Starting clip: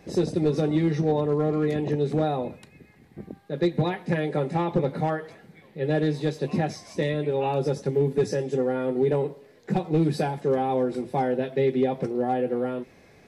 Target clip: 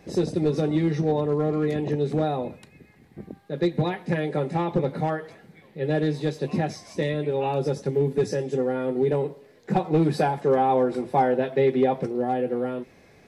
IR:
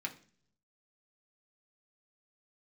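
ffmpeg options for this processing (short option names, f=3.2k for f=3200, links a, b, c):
-filter_complex "[0:a]asettb=1/sr,asplit=3[a][b][c];[a]atrim=end=9.714[d];[b]atrim=start=9.71:end=12,asetpts=PTS-STARTPTS,afade=t=in:d=0.004:c=qsin,afade=t=out:st=2.286:d=0.004:c=qsin,equalizer=f=1k:t=o:w=2:g=6.5[e];[c]atrim=start=11.996[f];[d][e]acrossfade=d=0.004:c1=hsin:c2=qsin[g];[g][f]acrossfade=d=0.004:c1=qsin:c2=hsin"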